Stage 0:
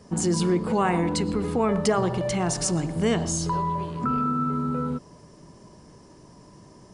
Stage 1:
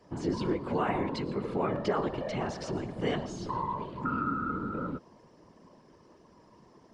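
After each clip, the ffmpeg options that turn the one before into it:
ffmpeg -i in.wav -filter_complex "[0:a]acrossover=split=6100[link_01][link_02];[link_02]acompressor=threshold=-45dB:ratio=4:attack=1:release=60[link_03];[link_01][link_03]amix=inputs=2:normalize=0,acrossover=split=160 4900:gain=0.141 1 0.126[link_04][link_05][link_06];[link_04][link_05][link_06]amix=inputs=3:normalize=0,afftfilt=real='hypot(re,im)*cos(2*PI*random(0))':imag='hypot(re,im)*sin(2*PI*random(1))':win_size=512:overlap=0.75" out.wav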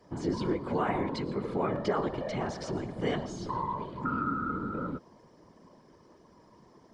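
ffmpeg -i in.wav -af "bandreject=frequency=2700:width=9.9" out.wav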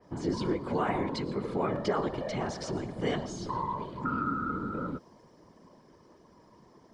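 ffmpeg -i in.wav -af "adynamicequalizer=threshold=0.00398:dfrequency=3700:dqfactor=0.7:tfrequency=3700:tqfactor=0.7:attack=5:release=100:ratio=0.375:range=2:mode=boostabove:tftype=highshelf" out.wav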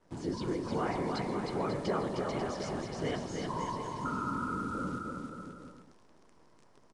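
ffmpeg -i in.wav -filter_complex "[0:a]acrusher=bits=9:dc=4:mix=0:aa=0.000001,asplit=2[link_01][link_02];[link_02]aecho=0:1:310|542.5|716.9|847.7|945.7:0.631|0.398|0.251|0.158|0.1[link_03];[link_01][link_03]amix=inputs=2:normalize=0,aresample=22050,aresample=44100,volume=-4.5dB" out.wav

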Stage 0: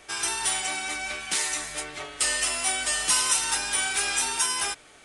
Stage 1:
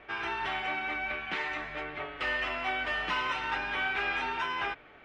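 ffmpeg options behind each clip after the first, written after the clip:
ffmpeg -i in.wav -af "lowpass=frequency=2600:width=0.5412,lowpass=frequency=2600:width=1.3066" out.wav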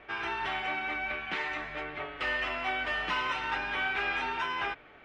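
ffmpeg -i in.wav -af anull out.wav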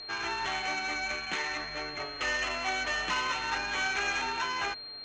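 ffmpeg -i in.wav -af "adynamicsmooth=sensitivity=6:basefreq=3600,aeval=exprs='val(0)+0.00562*sin(2*PI*4200*n/s)':channel_layout=same,lowpass=frequency=6400:width_type=q:width=5.7" out.wav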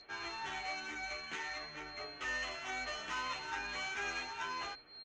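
ffmpeg -i in.wav -filter_complex "[0:a]asplit=2[link_01][link_02];[link_02]adelay=10.8,afreqshift=2.3[link_03];[link_01][link_03]amix=inputs=2:normalize=1,volume=-6dB" out.wav

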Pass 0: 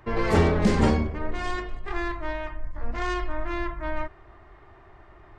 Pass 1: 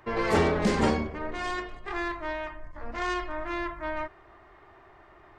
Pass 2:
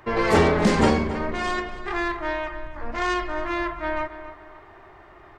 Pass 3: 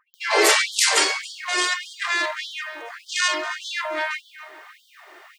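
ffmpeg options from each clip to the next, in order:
ffmpeg -i in.wav -af "lowshelf=frequency=160:gain=-11.5" out.wav
ffmpeg -i in.wav -filter_complex "[0:a]asplit=2[link_01][link_02];[link_02]adelay=276,lowpass=frequency=3600:poles=1,volume=-12.5dB,asplit=2[link_03][link_04];[link_04]adelay=276,lowpass=frequency=3600:poles=1,volume=0.39,asplit=2[link_05][link_06];[link_06]adelay=276,lowpass=frequency=3600:poles=1,volume=0.39,asplit=2[link_07][link_08];[link_08]adelay=276,lowpass=frequency=3600:poles=1,volume=0.39[link_09];[link_01][link_03][link_05][link_07][link_09]amix=inputs=5:normalize=0,volume=5.5dB" out.wav
ffmpeg -i in.wav -filter_complex "[0:a]crystalizer=i=7.5:c=0,acrossover=split=970[link_01][link_02];[link_02]adelay=140[link_03];[link_01][link_03]amix=inputs=2:normalize=0,afftfilt=real='re*gte(b*sr/1024,280*pow(3100/280,0.5+0.5*sin(2*PI*1.7*pts/sr)))':imag='im*gte(b*sr/1024,280*pow(3100/280,0.5+0.5*sin(2*PI*1.7*pts/sr)))':win_size=1024:overlap=0.75" out.wav

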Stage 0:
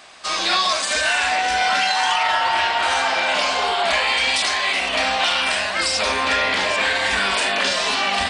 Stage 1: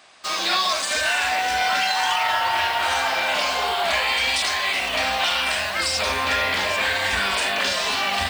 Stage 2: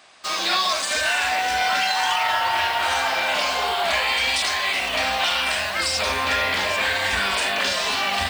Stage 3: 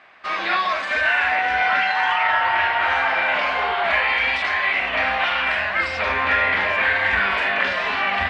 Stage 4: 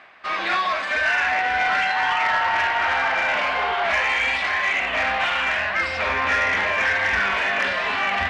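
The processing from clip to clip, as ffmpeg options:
ffmpeg -i in.wav -filter_complex "[0:a]highpass=frequency=65:width=0.5412,highpass=frequency=65:width=1.3066,asubboost=boost=3:cutoff=120,asplit=2[link_01][link_02];[link_02]acrusher=bits=4:mix=0:aa=0.000001,volume=-4dB[link_03];[link_01][link_03]amix=inputs=2:normalize=0,volume=-6.5dB" out.wav
ffmpeg -i in.wav -af anull out.wav
ffmpeg -i in.wav -af "lowpass=frequency=2000:width_type=q:width=1.9" out.wav
ffmpeg -i in.wav -af "areverse,acompressor=mode=upward:threshold=-32dB:ratio=2.5,areverse,asoftclip=type=tanh:threshold=-13dB" out.wav

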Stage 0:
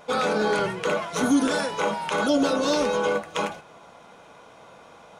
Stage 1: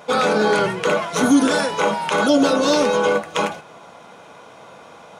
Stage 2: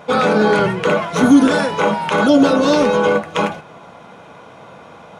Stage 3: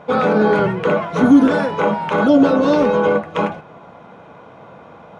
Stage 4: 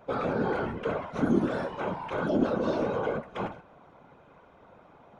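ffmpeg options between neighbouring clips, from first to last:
ffmpeg -i in.wav -af "highpass=83,volume=6dB" out.wav
ffmpeg -i in.wav -af "bass=frequency=250:gain=6,treble=frequency=4000:gain=-7,volume=2.5dB" out.wav
ffmpeg -i in.wav -af "lowpass=frequency=1500:poles=1" out.wav
ffmpeg -i in.wav -af "afftfilt=real='hypot(re,im)*cos(2*PI*random(0))':imag='hypot(re,im)*sin(2*PI*random(1))':win_size=512:overlap=0.75,volume=-8dB" out.wav

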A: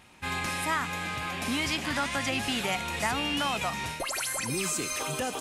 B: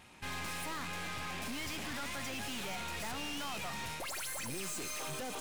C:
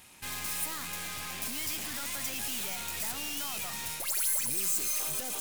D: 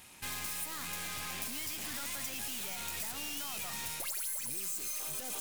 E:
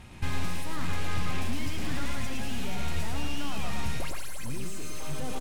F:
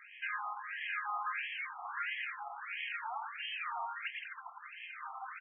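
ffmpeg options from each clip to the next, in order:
ffmpeg -i in.wav -af "aeval=exprs='(tanh(100*val(0)+0.6)-tanh(0.6))/100':channel_layout=same,volume=1dB" out.wav
ffmpeg -i in.wav -af "aemphasis=mode=production:type=75fm,volume=-1.5dB" out.wav
ffmpeg -i in.wav -af "acompressor=threshold=-34dB:ratio=6" out.wav
ffmpeg -i in.wav -filter_complex "[0:a]aemphasis=mode=reproduction:type=riaa,asplit=2[link_01][link_02];[link_02]aecho=0:1:111:0.631[link_03];[link_01][link_03]amix=inputs=2:normalize=0,volume=6dB" out.wav
ffmpeg -i in.wav -af "highpass=560,lowpass=3600,afftfilt=real='re*between(b*sr/1024,950*pow(2400/950,0.5+0.5*sin(2*PI*1.5*pts/sr))/1.41,950*pow(2400/950,0.5+0.5*sin(2*PI*1.5*pts/sr))*1.41)':imag='im*between(b*sr/1024,950*pow(2400/950,0.5+0.5*sin(2*PI*1.5*pts/sr))/1.41,950*pow(2400/950,0.5+0.5*sin(2*PI*1.5*pts/sr))*1.41)':win_size=1024:overlap=0.75,volume=5dB" out.wav

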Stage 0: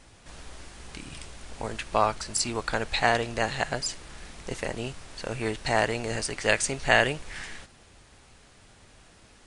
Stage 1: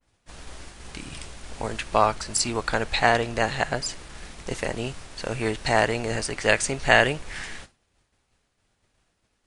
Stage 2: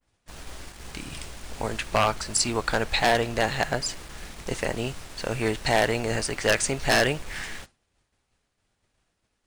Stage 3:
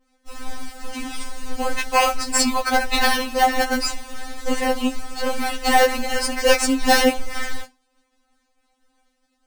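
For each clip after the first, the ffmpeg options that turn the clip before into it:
ffmpeg -i in.wav -af "agate=range=-33dB:threshold=-41dB:ratio=3:detection=peak,adynamicequalizer=threshold=0.0126:dfrequency=2600:dqfactor=0.7:tfrequency=2600:tqfactor=0.7:attack=5:release=100:ratio=0.375:range=2:mode=cutabove:tftype=highshelf,volume=3.5dB" out.wav
ffmpeg -i in.wav -filter_complex "[0:a]asplit=2[link_01][link_02];[link_02]acrusher=bits=6:mix=0:aa=0.000001,volume=-4.5dB[link_03];[link_01][link_03]amix=inputs=2:normalize=0,aeval=exprs='0.398*(abs(mod(val(0)/0.398+3,4)-2)-1)':channel_layout=same,volume=-3.5dB" out.wav
ffmpeg -i in.wav -filter_complex "[0:a]asplit=2[link_01][link_02];[link_02]acrusher=samples=12:mix=1:aa=0.000001,volume=-3dB[link_03];[link_01][link_03]amix=inputs=2:normalize=0,afftfilt=real='re*3.46*eq(mod(b,12),0)':imag='im*3.46*eq(mod(b,12),0)':win_size=2048:overlap=0.75,volume=6dB" out.wav

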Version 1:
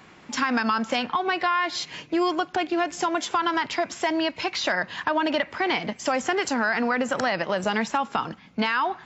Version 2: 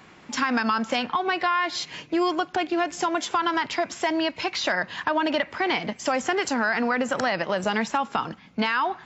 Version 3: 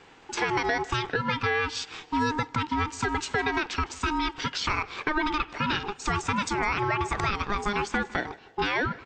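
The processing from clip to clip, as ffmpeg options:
ffmpeg -i in.wav -af anull out.wav
ffmpeg -i in.wav -af "aeval=exprs='val(0)*sin(2*PI*610*n/s)':channel_layout=same,aecho=1:1:156|312|468:0.0794|0.0286|0.0103" out.wav

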